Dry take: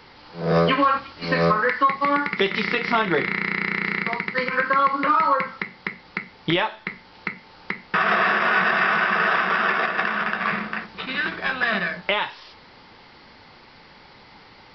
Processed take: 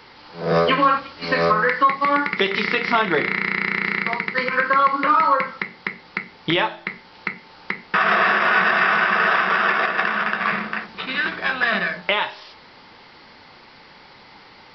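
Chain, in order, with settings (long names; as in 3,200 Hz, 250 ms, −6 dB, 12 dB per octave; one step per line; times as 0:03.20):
low-shelf EQ 130 Hz −6.5 dB
hum removal 56.33 Hz, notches 15
level +2.5 dB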